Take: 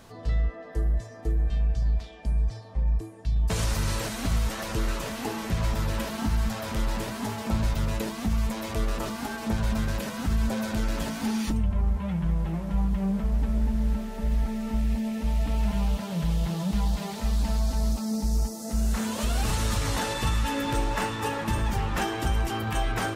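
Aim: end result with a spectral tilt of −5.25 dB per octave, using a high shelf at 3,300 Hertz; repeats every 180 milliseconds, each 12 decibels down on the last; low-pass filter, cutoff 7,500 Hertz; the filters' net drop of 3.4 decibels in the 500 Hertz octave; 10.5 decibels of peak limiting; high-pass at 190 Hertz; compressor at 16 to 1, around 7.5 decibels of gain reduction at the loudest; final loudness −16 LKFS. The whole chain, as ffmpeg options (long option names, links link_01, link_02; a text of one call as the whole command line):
ffmpeg -i in.wav -af "highpass=190,lowpass=7500,equalizer=frequency=500:width_type=o:gain=-4,highshelf=frequency=3300:gain=-6,acompressor=threshold=-34dB:ratio=16,alimiter=level_in=10.5dB:limit=-24dB:level=0:latency=1,volume=-10.5dB,aecho=1:1:180|360|540:0.251|0.0628|0.0157,volume=26.5dB" out.wav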